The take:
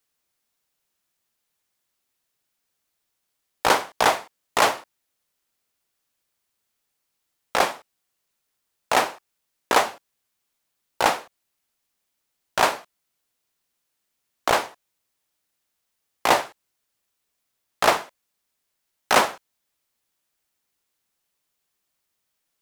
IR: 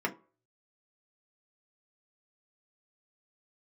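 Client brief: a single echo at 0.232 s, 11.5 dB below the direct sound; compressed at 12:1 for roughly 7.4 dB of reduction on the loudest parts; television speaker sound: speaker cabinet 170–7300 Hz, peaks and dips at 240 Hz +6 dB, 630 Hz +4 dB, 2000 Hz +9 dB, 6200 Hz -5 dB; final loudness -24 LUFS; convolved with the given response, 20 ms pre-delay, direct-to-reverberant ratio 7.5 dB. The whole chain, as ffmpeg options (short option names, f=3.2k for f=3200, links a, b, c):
-filter_complex "[0:a]acompressor=threshold=-20dB:ratio=12,aecho=1:1:232:0.266,asplit=2[a][b];[1:a]atrim=start_sample=2205,adelay=20[c];[b][c]afir=irnorm=-1:irlink=0,volume=-15dB[d];[a][d]amix=inputs=2:normalize=0,highpass=f=170:w=0.5412,highpass=f=170:w=1.3066,equalizer=f=240:t=q:w=4:g=6,equalizer=f=630:t=q:w=4:g=4,equalizer=f=2k:t=q:w=4:g=9,equalizer=f=6.2k:t=q:w=4:g=-5,lowpass=f=7.3k:w=0.5412,lowpass=f=7.3k:w=1.3066,volume=2.5dB"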